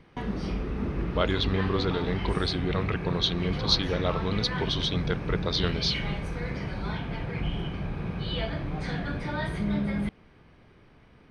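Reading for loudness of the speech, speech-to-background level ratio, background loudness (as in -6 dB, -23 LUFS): -28.5 LUFS, 3.5 dB, -32.0 LUFS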